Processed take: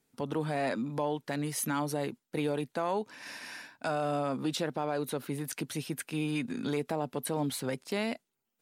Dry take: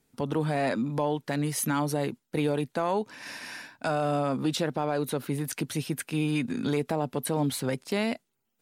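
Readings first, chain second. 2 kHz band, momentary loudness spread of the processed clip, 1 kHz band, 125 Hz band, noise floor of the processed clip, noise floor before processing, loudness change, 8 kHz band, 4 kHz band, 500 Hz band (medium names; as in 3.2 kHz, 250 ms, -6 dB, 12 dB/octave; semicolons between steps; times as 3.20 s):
-3.5 dB, 5 LU, -3.5 dB, -6.5 dB, -84 dBFS, -79 dBFS, -4.5 dB, -3.5 dB, -3.5 dB, -4.0 dB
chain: bass shelf 120 Hz -7.5 dB; trim -3.5 dB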